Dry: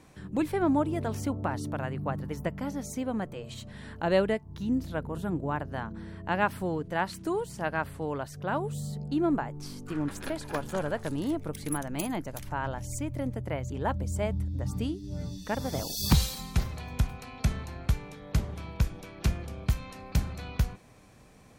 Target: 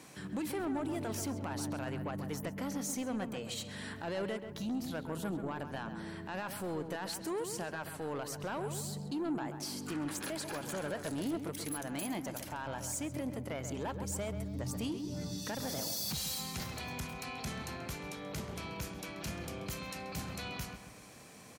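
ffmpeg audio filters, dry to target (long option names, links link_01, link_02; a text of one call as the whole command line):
ffmpeg -i in.wav -filter_complex "[0:a]highpass=140,highshelf=frequency=2400:gain=8.5,bandreject=frequency=3600:width=29,asplit=2[link_01][link_02];[link_02]acompressor=threshold=-38dB:ratio=6,volume=0dB[link_03];[link_01][link_03]amix=inputs=2:normalize=0,alimiter=limit=-21dB:level=0:latency=1:release=31,asoftclip=type=tanh:threshold=-26.5dB,asplit=2[link_04][link_05];[link_05]adelay=133,lowpass=frequency=2300:poles=1,volume=-8dB,asplit=2[link_06][link_07];[link_07]adelay=133,lowpass=frequency=2300:poles=1,volume=0.48,asplit=2[link_08][link_09];[link_09]adelay=133,lowpass=frequency=2300:poles=1,volume=0.48,asplit=2[link_10][link_11];[link_11]adelay=133,lowpass=frequency=2300:poles=1,volume=0.48,asplit=2[link_12][link_13];[link_13]adelay=133,lowpass=frequency=2300:poles=1,volume=0.48,asplit=2[link_14][link_15];[link_15]adelay=133,lowpass=frequency=2300:poles=1,volume=0.48[link_16];[link_04][link_06][link_08][link_10][link_12][link_14][link_16]amix=inputs=7:normalize=0,volume=-5dB" out.wav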